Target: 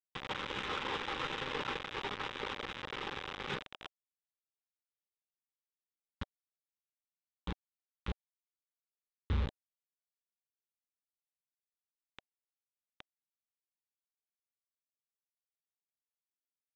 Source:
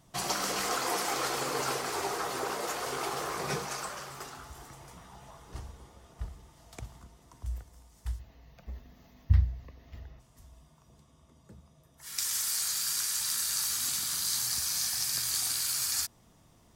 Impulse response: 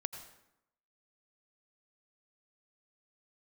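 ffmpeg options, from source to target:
-af "aresample=8000,acrusher=bits=4:mix=0:aa=0.000001,aresample=44100,asoftclip=type=tanh:threshold=0.0596,asuperstop=centerf=680:order=4:qfactor=4.4,volume=0.708"

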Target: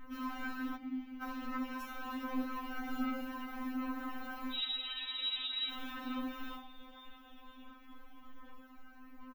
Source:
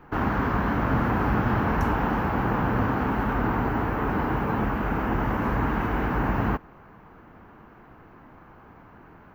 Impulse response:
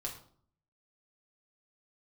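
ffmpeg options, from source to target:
-filter_complex "[0:a]aexciter=amount=2.9:drive=6:freq=2500,asoftclip=type=tanh:threshold=0.075,aphaser=in_gain=1:out_gain=1:delay=1.4:decay=0.51:speed=1.3:type=sinusoidal,asettb=1/sr,asplit=3[s0][s1][s2];[s0]atrim=end=2.724[s3];[s1]atrim=start=2.72:end=3.23,asetpts=PTS-STARTPTS,afade=t=in:d=0.004:c=qsin,afade=t=out:st=0.506:d=0.004:c=qsin,aecho=1:1:5.3:0.96,atrim=end_sample=22491[s4];[s2]atrim=start=3.226[s5];[s3][s4]acrossfade=d=0.004:c1=hsin:c2=qsin[s6];[s6][s5]acrossfade=d=0.004:c1=qsin:c2=hsin,asettb=1/sr,asplit=3[s7][s8][s9];[s7]atrim=end=4.524[s10];[s8]atrim=start=4.52:end=5.7,asetpts=PTS-STARTPTS,afade=t=in:d=0.004:c=qsin,afade=t=out:st=1.176:d=0.004:c=qsin,lowpass=f=3400:t=q:w=0.5098,lowpass=f=3400:t=q:w=0.6013,lowpass=f=3400:t=q:w=0.9,lowpass=f=3400:t=q:w=2.563,afreqshift=-4000[s11];[s9]atrim=start=5.696[s12];[s10][s11]acrossfade=d=0.004:c1=hsin:c2=qsin[s13];[s13][s12]acrossfade=d=0.004:c1=qsin:c2=hsin[s14];[1:a]atrim=start_sample=2205,afade=t=out:st=0.15:d=0.01,atrim=end_sample=7056[s15];[s14][s15]afir=irnorm=-1:irlink=0,acompressor=threshold=0.0224:ratio=1.5,asplit=3[s16][s17][s18];[s16]afade=t=out:st=0.75:d=0.02[s19];[s17]asplit=3[s20][s21][s22];[s20]bandpass=f=270:t=q:w=8,volume=1[s23];[s21]bandpass=f=2290:t=q:w=8,volume=0.501[s24];[s22]bandpass=f=3010:t=q:w=8,volume=0.355[s25];[s23][s24][s25]amix=inputs=3:normalize=0,afade=t=in:st=0.75:d=0.02,afade=t=out:st=1.21:d=0.02[s26];[s18]afade=t=in:st=1.21:d=0.02[s27];[s19][s26][s27]amix=inputs=3:normalize=0,asplit=7[s28][s29][s30][s31][s32][s33][s34];[s29]adelay=491,afreqshift=-82,volume=0.112[s35];[s30]adelay=982,afreqshift=-164,volume=0.0716[s36];[s31]adelay=1473,afreqshift=-246,volume=0.0457[s37];[s32]adelay=1964,afreqshift=-328,volume=0.0295[s38];[s33]adelay=2455,afreqshift=-410,volume=0.0188[s39];[s34]adelay=2946,afreqshift=-492,volume=0.012[s40];[s28][s35][s36][s37][s38][s39][s40]amix=inputs=7:normalize=0,afftfilt=real='re*3.46*eq(mod(b,12),0)':imag='im*3.46*eq(mod(b,12),0)':win_size=2048:overlap=0.75,volume=0.422"

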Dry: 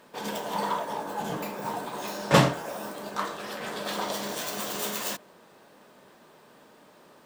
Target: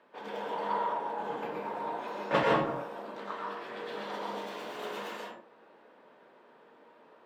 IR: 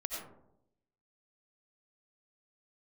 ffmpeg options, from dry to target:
-filter_complex "[0:a]acrossover=split=240 3300:gain=0.2 1 0.0794[s0][s1][s2];[s0][s1][s2]amix=inputs=3:normalize=0,asettb=1/sr,asplit=3[s3][s4][s5];[s3]atrim=end=2.434[s6];[s4]atrim=start=2.43:end=4.69,asetpts=PTS-STARTPTS,afade=t=in:d=0.004:c=qsin,afade=t=out:st=2.256:d=0.004:c=qsin,acrossover=split=560|1700[s7][s8][s9];[s7]adelay=70[s10];[s8]adelay=110[s11];[s10][s11][s9]amix=inputs=3:normalize=0,atrim=end_sample=99666[s12];[s5]atrim=start=4.686[s13];[s6][s12]acrossfade=d=0.004:c1=hsin:c2=qsin[s14];[s14][s13]acrossfade=d=0.004:c1=qsin:c2=hsin[s15];[1:a]atrim=start_sample=2205,afade=t=out:st=0.25:d=0.01,atrim=end_sample=11466,asetrate=32193,aresample=44100[s16];[s15][s16]afir=irnorm=-1:irlink=0,volume=0.501"

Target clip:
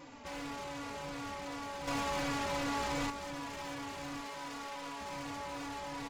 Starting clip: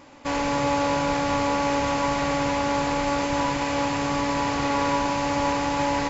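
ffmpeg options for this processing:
-filter_complex "[0:a]alimiter=limit=0.0841:level=0:latency=1:release=27,asoftclip=type=tanh:threshold=0.0133,asettb=1/sr,asplit=3[s0][s1][s2];[s0]atrim=end=1.874[s3];[s1]atrim=start=1.87:end=3.1,asetpts=PTS-STARTPTS,afade=t=in:d=0.004:c=qsin,afade=t=out:st=1.226:d=0.004:c=qsin,acontrast=90[s4];[s2]atrim=start=3.096[s5];[s3][s4]acrossfade=d=0.004:c1=hsin:c2=qsin[s6];[s6][s5]acrossfade=d=0.004:c1=qsin:c2=hsin,asettb=1/sr,asplit=3[s7][s8][s9];[s7]atrim=end=4.204[s10];[s8]atrim=start=4.2:end=5.01,asetpts=PTS-STARTPTS,afade=t=in:d=0.004:c=qsin,afade=t=out:st=0.806:d=0.004:c=qsin,equalizer=f=61:w=0.33:g=-11.5[s11];[s9]atrim=start=5.006[s12];[s10][s11]acrossfade=d=0.004:c1=hsin:c2=qsin[s13];[s13][s12]acrossfade=d=0.004:c1=qsin:c2=hsin,asplit=2[s14][s15];[s15]adelay=3.5,afreqshift=-2.7[s16];[s14][s16]amix=inputs=2:normalize=1"

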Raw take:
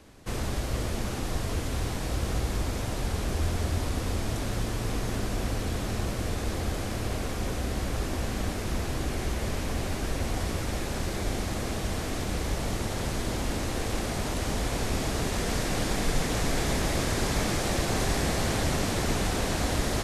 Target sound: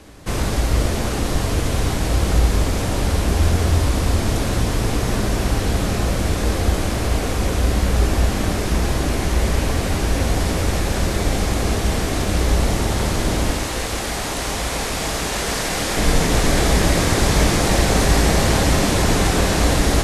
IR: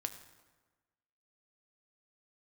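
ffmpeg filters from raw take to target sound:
-filter_complex "[0:a]asettb=1/sr,asplit=3[s0][s1][s2];[s0]atrim=end=13.514[s3];[s1]atrim=start=13.51:end=15.97,asetpts=PTS-STARTPTS,afade=t=in:d=0.004:c=qsin,afade=t=out:st=2.456:d=0.004:c=qsin,lowshelf=f=450:g=-9.5[s4];[s2]atrim=start=15.966[s5];[s3][s4]acrossfade=d=0.004:c1=hsin:c2=qsin[s6];[s6][s5]acrossfade=d=0.004:c1=qsin:c2=hsin[s7];[1:a]atrim=start_sample=2205,asetrate=25137,aresample=44100[s8];[s7][s8]afir=irnorm=-1:irlink=0,volume=2.51"

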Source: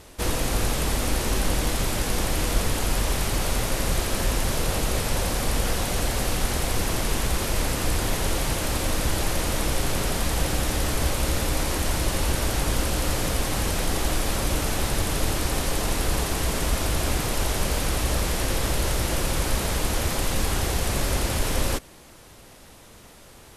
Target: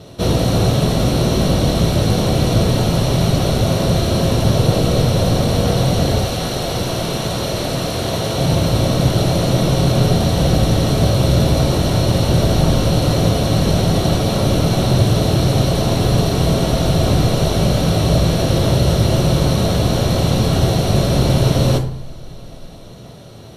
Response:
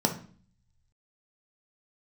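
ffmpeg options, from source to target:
-filter_complex "[0:a]asettb=1/sr,asplit=3[s0][s1][s2];[s0]atrim=end=6.194[s3];[s1]atrim=start=6.19:end=8.38,asetpts=PTS-STARTPTS,afade=t=in:d=0.004:c=qsin,afade=t=out:st=2.186:d=0.004:c=qsin,lowshelf=f=280:g=-10[s4];[s2]atrim=start=8.376[s5];[s3][s4]acrossfade=d=0.004:c1=hsin:c2=qsin[s6];[s6][s5]acrossfade=d=0.004:c1=qsin:c2=hsin[s7];[1:a]atrim=start_sample=2205,asetrate=32193,aresample=44100[s8];[s7][s8]afir=irnorm=-1:irlink=0,volume=0.531"

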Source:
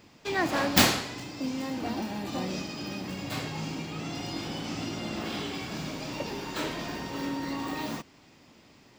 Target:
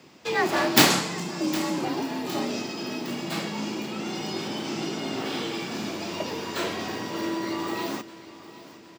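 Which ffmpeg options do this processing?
-filter_complex "[0:a]asettb=1/sr,asplit=3[s0][s1][s2];[s0]atrim=end=0.904[s3];[s1]atrim=start=0.9:end=1.85,asetpts=PTS-STARTPTS,afade=t=in:d=0.004:c=qsin,afade=t=out:st=0.946:d=0.004:c=qsin,equalizer=f=125:t=o:w=1:g=8,equalizer=f=1000:t=o:w=1:g=4,equalizer=f=8000:t=o:w=1:g=7[s4];[s2]atrim=start=1.846[s5];[s3][s4]acrossfade=d=0.004:c1=hsin:c2=qsin[s6];[s6][s5]acrossfade=d=0.004:c1=qsin:c2=hsin,afreqshift=53,aecho=1:1:761|1522|2283|3044|3805:0.141|0.0735|0.0382|0.0199|0.0103,volume=1.5"

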